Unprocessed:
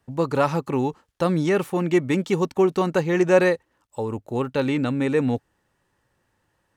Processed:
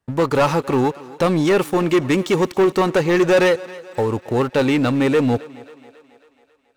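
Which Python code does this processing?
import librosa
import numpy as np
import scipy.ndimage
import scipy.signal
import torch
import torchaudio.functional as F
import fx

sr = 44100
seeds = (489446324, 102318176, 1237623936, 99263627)

p1 = fx.dynamic_eq(x, sr, hz=180.0, q=1.2, threshold_db=-36.0, ratio=4.0, max_db=-6)
p2 = fx.leveller(p1, sr, passes=3)
p3 = p2 + fx.echo_thinned(p2, sr, ms=272, feedback_pct=58, hz=250.0, wet_db=-19, dry=0)
y = F.gain(torch.from_numpy(p3), -2.0).numpy()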